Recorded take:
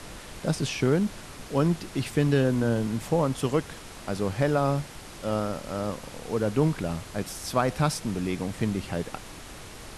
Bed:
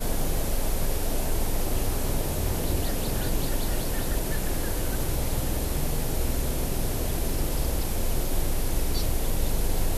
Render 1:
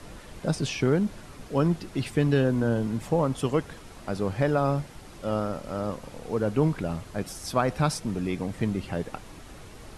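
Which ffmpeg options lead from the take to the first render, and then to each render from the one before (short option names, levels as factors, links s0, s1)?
-af "afftdn=nr=7:nf=-43"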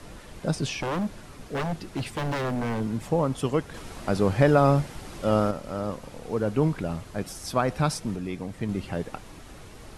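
-filter_complex "[0:a]asettb=1/sr,asplit=3[s0][s1][s2];[s0]atrim=end=0.794[s3];[s1]atrim=start=0.79:end=2.81,asetpts=PTS-STARTPTS,afade=t=in:d=0.004:c=qsin,afade=t=out:st=2.016:d=0.004:c=qsin,aeval=exprs='0.075*(abs(mod(val(0)/0.075+3,4)-2)-1)':c=same[s4];[s2]atrim=start=2.806[s5];[s3][s4]acrossfade=d=0.004:c1=hsin:c2=qsin[s6];[s6][s5]acrossfade=d=0.004:c1=qsin:c2=hsin,asettb=1/sr,asplit=3[s7][s8][s9];[s7]atrim=end=3.744[s10];[s8]atrim=start=3.74:end=5.51,asetpts=PTS-STARTPTS,afade=t=in:d=0.004:c=qsin,afade=t=out:st=1.766:d=0.004:c=qsin,acontrast=38[s11];[s9]atrim=start=5.506[s12];[s10][s11]acrossfade=d=0.004:c1=hsin:c2=qsin[s13];[s13][s12]acrossfade=d=0.004:c1=qsin:c2=hsin,asplit=3[s14][s15][s16];[s14]atrim=end=8.162[s17];[s15]atrim=start=8.158:end=8.692,asetpts=PTS-STARTPTS,volume=0.668[s18];[s16]atrim=start=8.688[s19];[s17][s18]acrossfade=d=0.004:c1=hsin:c2=hsin[s20];[s20][s19]acrossfade=d=0.004:c1=hsin:c2=hsin"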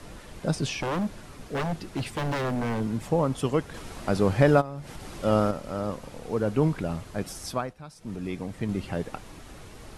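-filter_complex "[0:a]asplit=3[s0][s1][s2];[s0]afade=t=out:st=4.6:d=0.02[s3];[s1]acompressor=threshold=0.02:ratio=6:attack=3.2:release=140:knee=1:detection=peak,afade=t=in:st=4.6:d=0.02,afade=t=out:st=5.17:d=0.02[s4];[s2]afade=t=in:st=5.17:d=0.02[s5];[s3][s4][s5]amix=inputs=3:normalize=0,asplit=3[s6][s7][s8];[s6]atrim=end=7.74,asetpts=PTS-STARTPTS,afade=t=out:st=7.44:d=0.3:silence=0.105925[s9];[s7]atrim=start=7.74:end=7.96,asetpts=PTS-STARTPTS,volume=0.106[s10];[s8]atrim=start=7.96,asetpts=PTS-STARTPTS,afade=t=in:d=0.3:silence=0.105925[s11];[s9][s10][s11]concat=n=3:v=0:a=1"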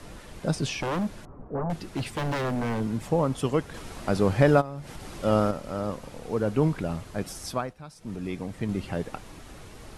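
-filter_complex "[0:a]asettb=1/sr,asplit=3[s0][s1][s2];[s0]atrim=end=1.254[s3];[s1]atrim=start=1.25:end=1.7,asetpts=PTS-STARTPTS,afade=t=in:d=0.004:c=qsin,afade=t=out:st=0.446:d=0.004:c=qsin,lowpass=f=1100:w=0.5412,lowpass=f=1100:w=1.3066[s4];[s2]atrim=start=1.696[s5];[s3][s4]acrossfade=d=0.004:c1=hsin:c2=qsin[s6];[s6][s5]acrossfade=d=0.004:c1=qsin:c2=hsin"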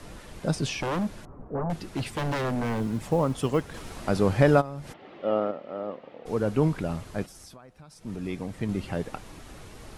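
-filter_complex "[0:a]asettb=1/sr,asplit=3[s0][s1][s2];[s0]atrim=end=2.644[s3];[s1]atrim=start=2.64:end=3.95,asetpts=PTS-STARTPTS,afade=t=in:d=0.004:c=qsin,afade=t=out:st=1.306:d=0.004:c=qsin,acrusher=bits=9:mode=log:mix=0:aa=0.000001[s4];[s2]atrim=start=3.946[s5];[s3][s4]acrossfade=d=0.004:c1=hsin:c2=qsin[s6];[s6][s5]acrossfade=d=0.004:c1=qsin:c2=hsin,asplit=3[s7][s8][s9];[s7]afade=t=out:st=4.92:d=0.02[s10];[s8]highpass=330,equalizer=f=990:t=q:w=4:g=-7,equalizer=f=1500:t=q:w=4:g=-8,equalizer=f=2400:t=q:w=4:g=-5,lowpass=f=2800:w=0.5412,lowpass=f=2800:w=1.3066,afade=t=in:st=4.92:d=0.02,afade=t=out:st=6.25:d=0.02[s11];[s9]afade=t=in:st=6.25:d=0.02[s12];[s10][s11][s12]amix=inputs=3:normalize=0,asplit=3[s13][s14][s15];[s13]afade=t=out:st=7.25:d=0.02[s16];[s14]acompressor=threshold=0.00631:ratio=12:attack=3.2:release=140:knee=1:detection=peak,afade=t=in:st=7.25:d=0.02,afade=t=out:st=8.01:d=0.02[s17];[s15]afade=t=in:st=8.01:d=0.02[s18];[s16][s17][s18]amix=inputs=3:normalize=0"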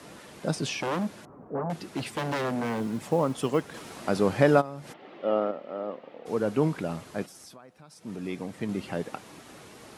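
-af "highpass=170"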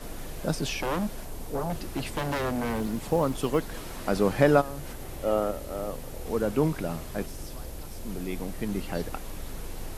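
-filter_complex "[1:a]volume=0.237[s0];[0:a][s0]amix=inputs=2:normalize=0"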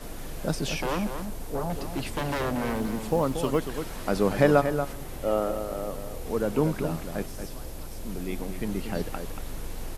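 -filter_complex "[0:a]asplit=2[s0][s1];[s1]adelay=233.2,volume=0.398,highshelf=f=4000:g=-5.25[s2];[s0][s2]amix=inputs=2:normalize=0"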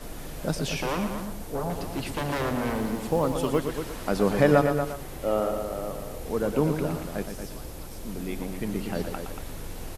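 -filter_complex "[0:a]asplit=2[s0][s1];[s1]adelay=116.6,volume=0.398,highshelf=f=4000:g=-2.62[s2];[s0][s2]amix=inputs=2:normalize=0"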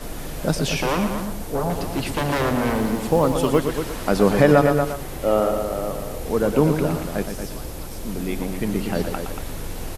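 -af "volume=2.11,alimiter=limit=0.708:level=0:latency=1"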